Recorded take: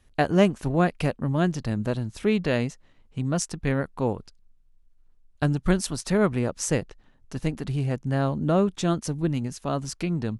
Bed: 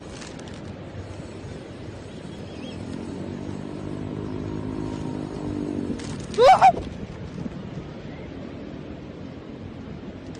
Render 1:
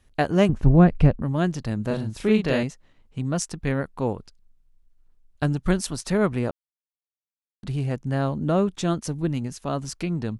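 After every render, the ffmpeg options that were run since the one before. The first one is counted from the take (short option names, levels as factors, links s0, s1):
-filter_complex "[0:a]asettb=1/sr,asplit=3[s0][s1][s2];[s0]atrim=end=0.494[s3];[s1]atrim=start=0.49:end=1.22,asetpts=PTS-STARTPTS,afade=t=in:d=0.004:c=qsin,afade=t=out:st=0.726:d=0.004:c=qsin,aemphasis=mode=reproduction:type=riaa[s4];[s2]atrim=start=1.216[s5];[s3][s4]acrossfade=d=0.004:c1=hsin:c2=qsin[s6];[s6][s5]acrossfade=d=0.004:c1=qsin:c2=hsin,asettb=1/sr,asplit=3[s7][s8][s9];[s7]atrim=end=1.874[s10];[s8]atrim=start=1.87:end=2.63,asetpts=PTS-STARTPTS,afade=t=in:d=0.004:c=qsin,afade=t=out:st=0.756:d=0.004:c=qsin,asplit=2[s11][s12];[s12]adelay=37,volume=0.708[s13];[s11][s13]amix=inputs=2:normalize=0,atrim=end_sample=33516[s14];[s9]atrim=start=2.626[s15];[s10][s14]acrossfade=d=0.004:c1=hsin:c2=qsin[s16];[s16][s15]acrossfade=d=0.004:c1=qsin:c2=hsin,asplit=3[s17][s18][s19];[s17]atrim=end=6.51,asetpts=PTS-STARTPTS,afade=t=out:st=6.506:d=0.004:c=hsin[s20];[s18]atrim=start=6.51:end=7.63,asetpts=PTS-STARTPTS,volume=0[s21];[s19]atrim=start=7.63,asetpts=PTS-STARTPTS,afade=t=in:d=0.004:c=hsin[s22];[s20][s21][s22]concat=n=3:v=0:a=1"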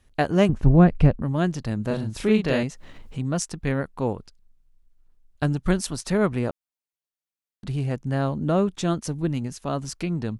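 -filter_complex "[0:a]asettb=1/sr,asplit=3[s0][s1][s2];[s0]atrim=end=2.034[s3];[s1]atrim=start=2.03:end=3.32,asetpts=PTS-STARTPTS,afade=t=in:d=0.004:c=qsin,afade=t=out:st=1.286:d=0.004:c=qsin,acompressor=mode=upward:threshold=0.0447:ratio=2.5:attack=3.2:release=140:knee=2.83:detection=peak[s4];[s2]atrim=start=3.316[s5];[s3][s4]acrossfade=d=0.004:c1=hsin:c2=qsin[s6];[s6][s5]acrossfade=d=0.004:c1=qsin:c2=hsin"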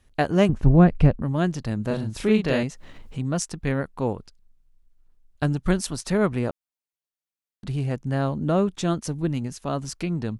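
-af anull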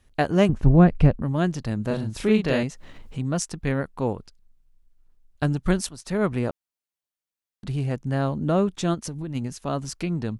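-filter_complex "[0:a]asplit=3[s0][s1][s2];[s0]afade=t=out:st=8.94:d=0.02[s3];[s1]acompressor=threshold=0.0398:ratio=6:attack=3.2:release=140:knee=1:detection=peak,afade=t=in:st=8.94:d=0.02,afade=t=out:st=9.34:d=0.02[s4];[s2]afade=t=in:st=9.34:d=0.02[s5];[s3][s4][s5]amix=inputs=3:normalize=0,asplit=2[s6][s7];[s6]atrim=end=5.89,asetpts=PTS-STARTPTS,afade=t=out:st=5.886:d=0.004:c=hsin:silence=0.188365[s8];[s7]atrim=start=5.89,asetpts=PTS-STARTPTS,afade=t=in:d=0.43:silence=0.188365[s9];[s8][s9]concat=n=2:v=0:a=1"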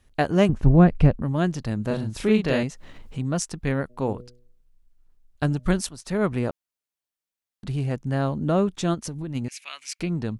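-filter_complex "[0:a]asplit=3[s0][s1][s2];[s0]afade=t=out:st=3.89:d=0.02[s3];[s1]bandreject=f=122.2:t=h:w=4,bandreject=f=244.4:t=h:w=4,bandreject=f=366.6:t=h:w=4,bandreject=f=488.8:t=h:w=4,bandreject=f=611:t=h:w=4,afade=t=in:st=3.89:d=0.02,afade=t=out:st=5.73:d=0.02[s4];[s2]afade=t=in:st=5.73:d=0.02[s5];[s3][s4][s5]amix=inputs=3:normalize=0,asettb=1/sr,asplit=3[s6][s7][s8];[s6]atrim=end=9.484[s9];[s7]atrim=start=9.48:end=10,asetpts=PTS-STARTPTS,afade=t=in:d=0.004:c=qsin,afade=t=out:st=0.516:d=0.004:c=qsin,highpass=f=2300:t=q:w=9.1[s10];[s8]atrim=start=9.996[s11];[s9][s10]acrossfade=d=0.004:c1=hsin:c2=qsin[s12];[s12][s11]acrossfade=d=0.004:c1=qsin:c2=hsin"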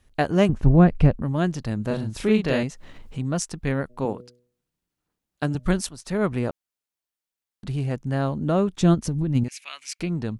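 -filter_complex "[0:a]asettb=1/sr,asplit=3[s0][s1][s2];[s0]atrim=end=4.054[s3];[s1]atrim=start=4.05:end=5.55,asetpts=PTS-STARTPTS,afade=t=in:d=0.004:c=qsin,afade=t=out:st=1.496:d=0.004:c=qsin,highpass=150[s4];[s2]atrim=start=5.546[s5];[s3][s4]acrossfade=d=0.004:c1=hsin:c2=qsin[s6];[s6][s5]acrossfade=d=0.004:c1=qsin:c2=hsin,asettb=1/sr,asplit=3[s7][s8][s9];[s7]atrim=end=8.814[s10];[s8]atrim=start=8.81:end=9.44,asetpts=PTS-STARTPTS,afade=t=in:d=0.004:c=qsin,afade=t=out:st=0.626:d=0.004:c=qsin,lowshelf=f=310:g=11[s11];[s9]atrim=start=9.436[s12];[s10][s11]acrossfade=d=0.004:c1=hsin:c2=qsin[s13];[s13][s12]acrossfade=d=0.004:c1=qsin:c2=hsin"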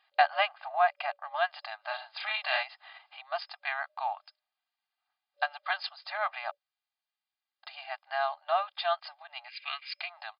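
-af "afftfilt=real='re*between(b*sr/4096,580,5100)':imag='im*between(b*sr/4096,580,5100)':win_size=4096:overlap=0.75,aecho=1:1:2.5:0.74"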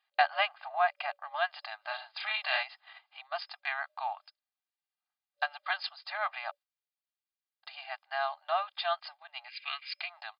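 -af "agate=range=0.355:threshold=0.00316:ratio=16:detection=peak,lowshelf=f=500:g=-9"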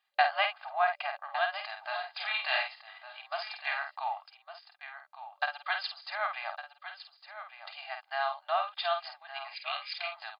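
-filter_complex "[0:a]asplit=2[s0][s1];[s1]adelay=50,volume=0.473[s2];[s0][s2]amix=inputs=2:normalize=0,asplit=2[s3][s4];[s4]aecho=0:1:1158:0.251[s5];[s3][s5]amix=inputs=2:normalize=0"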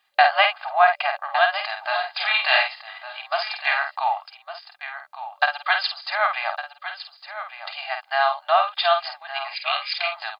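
-af "volume=3.76,alimiter=limit=0.708:level=0:latency=1"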